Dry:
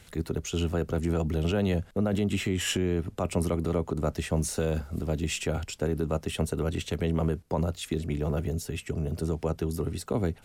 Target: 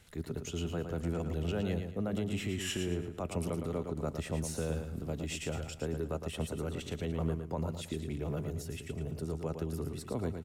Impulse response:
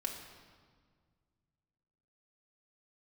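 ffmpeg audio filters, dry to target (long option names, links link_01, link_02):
-af "aecho=1:1:112|224|336|448:0.447|0.147|0.0486|0.0161,volume=-8dB"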